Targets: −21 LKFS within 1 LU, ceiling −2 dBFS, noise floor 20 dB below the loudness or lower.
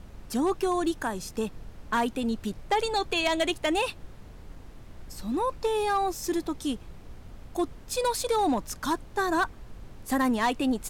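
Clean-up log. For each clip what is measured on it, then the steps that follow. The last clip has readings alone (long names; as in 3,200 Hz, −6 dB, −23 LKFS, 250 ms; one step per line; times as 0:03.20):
share of clipped samples 0.5%; peaks flattened at −19.0 dBFS; background noise floor −47 dBFS; target noise floor −49 dBFS; integrated loudness −28.5 LKFS; sample peak −19.0 dBFS; target loudness −21.0 LKFS
→ clipped peaks rebuilt −19 dBFS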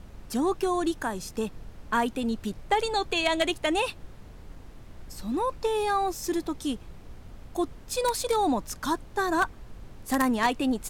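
share of clipped samples 0.0%; background noise floor −47 dBFS; target noise floor −48 dBFS
→ noise reduction from a noise print 6 dB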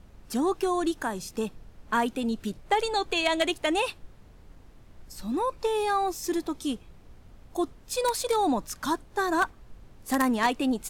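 background noise floor −53 dBFS; integrated loudness −28.0 LKFS; sample peak −10.0 dBFS; target loudness −21.0 LKFS
→ level +7 dB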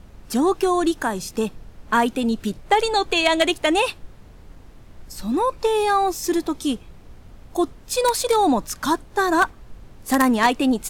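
integrated loudness −21.0 LKFS; sample peak −3.0 dBFS; background noise floor −46 dBFS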